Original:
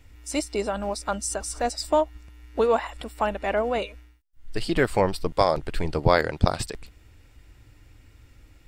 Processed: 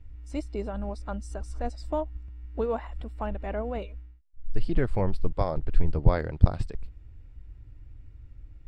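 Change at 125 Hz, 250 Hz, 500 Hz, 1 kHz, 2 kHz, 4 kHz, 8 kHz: +2.5 dB, -3.5 dB, -8.0 dB, -10.0 dB, -12.5 dB, -17.0 dB, under -20 dB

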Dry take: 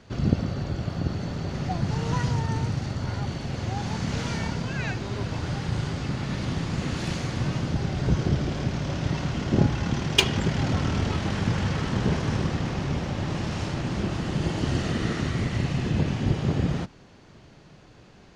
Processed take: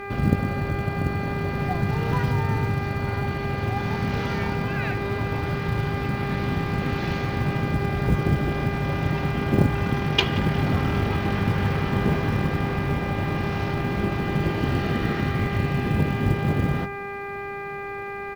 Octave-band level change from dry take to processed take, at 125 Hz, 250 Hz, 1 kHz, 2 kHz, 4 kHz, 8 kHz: +2.0 dB, +2.0 dB, +6.0 dB, +5.5 dB, -1.5 dB, n/a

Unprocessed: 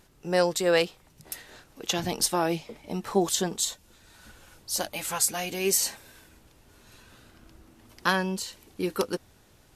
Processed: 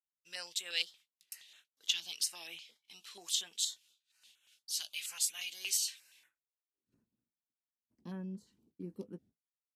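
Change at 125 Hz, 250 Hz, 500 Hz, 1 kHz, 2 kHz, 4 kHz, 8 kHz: under -15 dB, -18.0 dB, -28.0 dB, -28.5 dB, -13.0 dB, -4.0 dB, -8.0 dB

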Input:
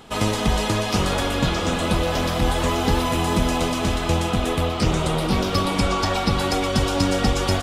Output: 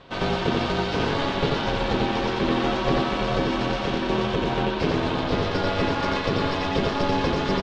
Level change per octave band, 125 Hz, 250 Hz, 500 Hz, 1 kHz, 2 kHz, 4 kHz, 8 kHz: -5.0, -2.0, -0.5, -1.5, -1.0, -3.5, -15.5 dB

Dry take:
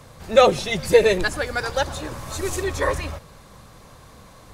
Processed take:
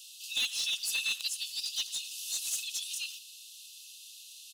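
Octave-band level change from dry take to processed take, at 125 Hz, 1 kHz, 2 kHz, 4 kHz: under -40 dB, under -35 dB, -12.0 dB, -1.0 dB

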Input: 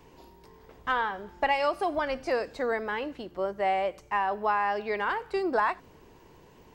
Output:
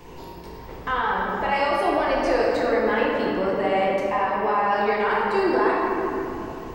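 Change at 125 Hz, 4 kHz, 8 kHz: +13.0 dB, +6.0 dB, n/a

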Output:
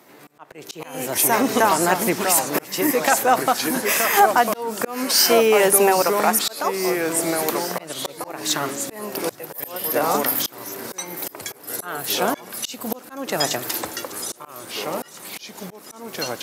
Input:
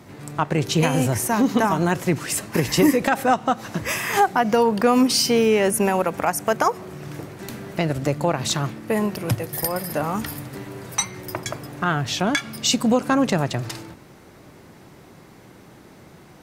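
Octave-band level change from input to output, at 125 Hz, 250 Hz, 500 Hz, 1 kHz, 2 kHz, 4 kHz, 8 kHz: -12.0, -5.0, +1.5, +2.0, +2.0, +2.0, +5.0 dB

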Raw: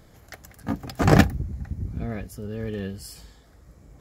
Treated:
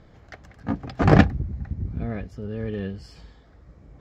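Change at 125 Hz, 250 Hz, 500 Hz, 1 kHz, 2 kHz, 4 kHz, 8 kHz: +1.5 dB, +1.5 dB, +1.0 dB, +0.5 dB, 0.0 dB, -3.5 dB, under -10 dB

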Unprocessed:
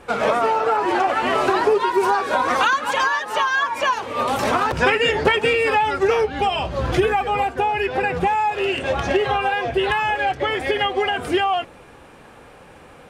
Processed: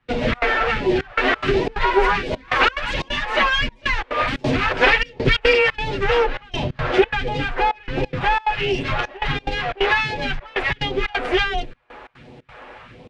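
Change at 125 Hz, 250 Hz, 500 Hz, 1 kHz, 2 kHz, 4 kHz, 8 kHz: +4.0 dB, +1.0 dB, -1.5 dB, -4.0 dB, +2.0 dB, +2.0 dB, n/a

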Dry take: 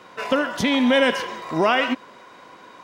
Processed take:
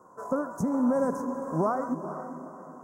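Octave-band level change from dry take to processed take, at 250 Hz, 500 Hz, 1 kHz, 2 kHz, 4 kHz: -5.0 dB, -7.0 dB, -7.5 dB, -22.0 dB, under -35 dB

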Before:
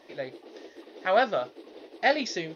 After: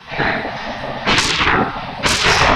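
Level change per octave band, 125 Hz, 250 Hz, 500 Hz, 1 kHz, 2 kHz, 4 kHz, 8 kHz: +25.0 dB, +13.5 dB, +6.0 dB, +12.5 dB, +15.5 dB, +20.0 dB, n/a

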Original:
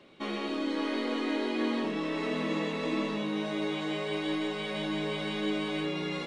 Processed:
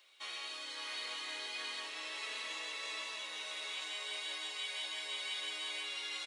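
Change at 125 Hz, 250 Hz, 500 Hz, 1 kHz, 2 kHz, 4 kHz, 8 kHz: under -40 dB, -33.0 dB, -21.0 dB, -11.0 dB, -4.0 dB, +0.5 dB, +6.0 dB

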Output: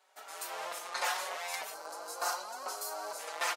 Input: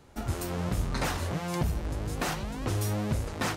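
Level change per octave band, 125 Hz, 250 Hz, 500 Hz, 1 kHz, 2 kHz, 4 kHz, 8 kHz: under -40 dB, -28.0 dB, -6.5 dB, 0.0 dB, -0.5 dB, -0.5 dB, 0.0 dB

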